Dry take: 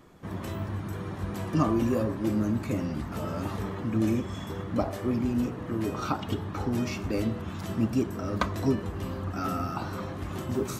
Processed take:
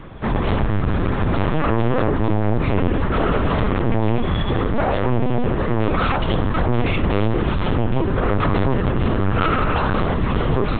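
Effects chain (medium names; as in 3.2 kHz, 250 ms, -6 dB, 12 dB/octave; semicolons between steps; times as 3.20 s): peak limiter -22.5 dBFS, peak gain reduction 11 dB; sine folder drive 6 dB, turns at -22.5 dBFS; LPC vocoder at 8 kHz pitch kept; trim +8.5 dB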